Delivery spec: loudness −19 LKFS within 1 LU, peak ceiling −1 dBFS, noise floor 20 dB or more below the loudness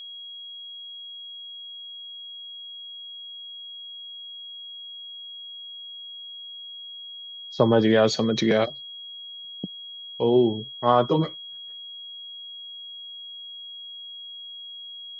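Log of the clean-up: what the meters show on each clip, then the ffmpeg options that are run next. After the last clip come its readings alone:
interfering tone 3,300 Hz; level of the tone −37 dBFS; integrated loudness −28.5 LKFS; sample peak −5.5 dBFS; target loudness −19.0 LKFS
→ -af "bandreject=frequency=3300:width=30"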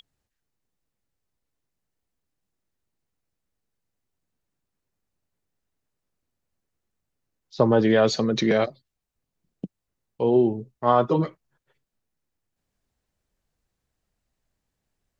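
interfering tone none found; integrated loudness −22.0 LKFS; sample peak −5.5 dBFS; target loudness −19.0 LKFS
→ -af "volume=3dB"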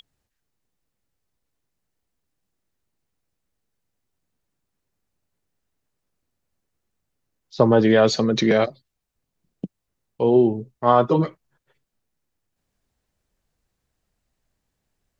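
integrated loudness −19.0 LKFS; sample peak −2.5 dBFS; background noise floor −80 dBFS

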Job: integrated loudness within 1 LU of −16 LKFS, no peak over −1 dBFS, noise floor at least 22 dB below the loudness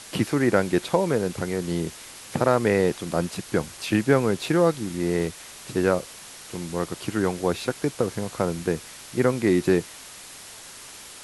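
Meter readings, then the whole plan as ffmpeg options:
background noise floor −43 dBFS; target noise floor −47 dBFS; integrated loudness −25.0 LKFS; sample peak −5.0 dBFS; target loudness −16.0 LKFS
→ -af "afftdn=noise_reduction=6:noise_floor=-43"
-af "volume=9dB,alimiter=limit=-1dB:level=0:latency=1"

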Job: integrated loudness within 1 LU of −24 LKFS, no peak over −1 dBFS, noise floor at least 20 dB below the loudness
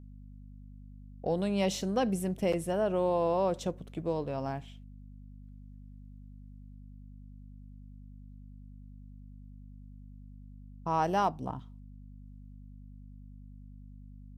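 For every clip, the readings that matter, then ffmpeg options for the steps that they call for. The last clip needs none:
mains hum 50 Hz; hum harmonics up to 250 Hz; level of the hum −47 dBFS; integrated loudness −31.5 LKFS; sample peak −17.0 dBFS; target loudness −24.0 LKFS
→ -af "bandreject=frequency=50:width_type=h:width=4,bandreject=frequency=100:width_type=h:width=4,bandreject=frequency=150:width_type=h:width=4,bandreject=frequency=200:width_type=h:width=4,bandreject=frequency=250:width_type=h:width=4"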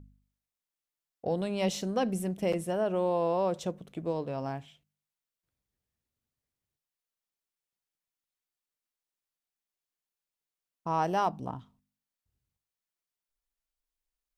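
mains hum none found; integrated loudness −31.5 LKFS; sample peak −16.5 dBFS; target loudness −24.0 LKFS
→ -af "volume=7.5dB"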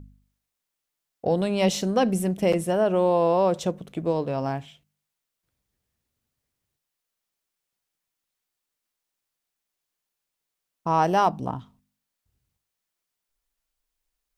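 integrated loudness −24.0 LKFS; sample peak −9.0 dBFS; background noise floor −84 dBFS

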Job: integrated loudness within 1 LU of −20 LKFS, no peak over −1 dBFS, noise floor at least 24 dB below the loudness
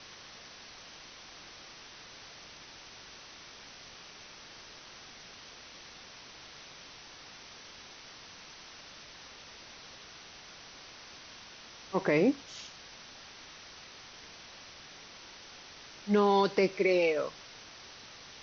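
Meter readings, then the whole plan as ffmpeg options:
background noise floor −51 dBFS; target noise floor −53 dBFS; integrated loudness −29.0 LKFS; sample peak −14.5 dBFS; target loudness −20.0 LKFS
→ -af "afftdn=noise_reduction=6:noise_floor=-51"
-af "volume=9dB"

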